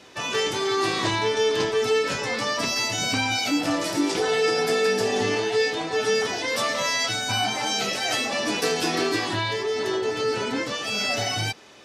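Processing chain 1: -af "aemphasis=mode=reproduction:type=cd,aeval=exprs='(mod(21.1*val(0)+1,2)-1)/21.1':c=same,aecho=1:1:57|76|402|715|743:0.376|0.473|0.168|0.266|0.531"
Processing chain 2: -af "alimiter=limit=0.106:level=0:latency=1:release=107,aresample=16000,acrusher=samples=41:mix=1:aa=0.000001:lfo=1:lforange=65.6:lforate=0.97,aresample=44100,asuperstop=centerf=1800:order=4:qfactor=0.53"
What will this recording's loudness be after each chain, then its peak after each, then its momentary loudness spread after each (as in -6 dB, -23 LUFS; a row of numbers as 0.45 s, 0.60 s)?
-26.5 LUFS, -31.0 LUFS; -18.5 dBFS, -17.5 dBFS; 1 LU, 4 LU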